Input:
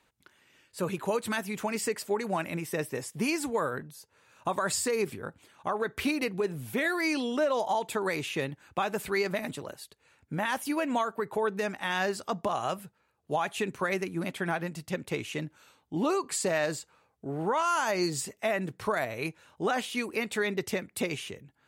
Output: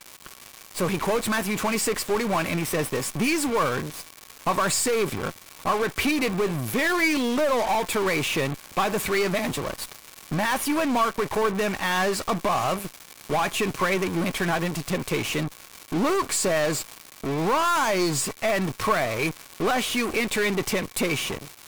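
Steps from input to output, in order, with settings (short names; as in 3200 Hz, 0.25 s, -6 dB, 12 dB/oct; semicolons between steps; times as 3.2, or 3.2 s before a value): half-wave gain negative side -12 dB; crackle 550/s -45 dBFS; in parallel at -11.5 dB: fuzz box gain 43 dB, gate -51 dBFS; on the sum: small resonant body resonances 1100/2300 Hz, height 8 dB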